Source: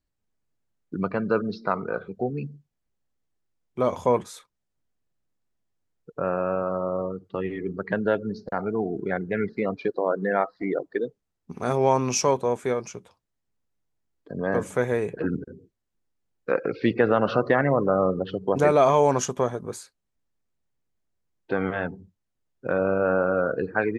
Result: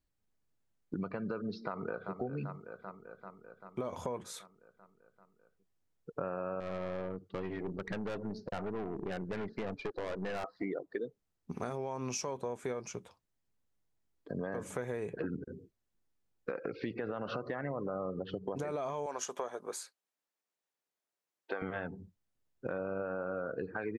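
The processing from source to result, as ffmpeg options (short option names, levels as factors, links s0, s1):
-filter_complex "[0:a]asplit=2[s0][s1];[s1]afade=t=in:st=1.63:d=0.01,afade=t=out:st=2.15:d=0.01,aecho=0:1:390|780|1170|1560|1950|2340|2730|3120|3510:0.199526|0.139668|0.0977679|0.0684375|0.0479062|0.0335344|0.0234741|0.0164318|0.0115023[s2];[s0][s2]amix=inputs=2:normalize=0,asettb=1/sr,asplit=3[s3][s4][s5];[s3]atrim=end=6.604[s6];[s4]atrim=start=6.6:end=10.44,asetpts=PTS-STARTPTS,afade=t=in:d=0.004:c=qsin,afade=t=out:st=3.836:d=0.004:c=qsin,aeval=exprs='(tanh(25.1*val(0)+0.5)-tanh(0.5))/25.1':c=same[s7];[s5]atrim=start=10.436[s8];[s6][s7]acrossfade=d=0.004:c1=hsin:c2=qsin[s9];[s9][s8]acrossfade=d=0.004:c1=qsin:c2=hsin,asettb=1/sr,asplit=3[s10][s11][s12];[s10]atrim=end=19.064[s13];[s11]atrim=start=19.06:end=21.62,asetpts=PTS-STARTPTS,afade=t=in:d=0.004:c=qsin,afade=t=out:st=2.556:d=0.004:c=qsin,highpass=490[s14];[s12]atrim=start=21.616[s15];[s13][s14]acrossfade=d=0.004:c1=hsin:c2=qsin[s16];[s16][s15]acrossfade=d=0.004:c1=qsin:c2=hsin,alimiter=limit=0.15:level=0:latency=1:release=104,acompressor=threshold=0.0251:ratio=6,volume=0.794"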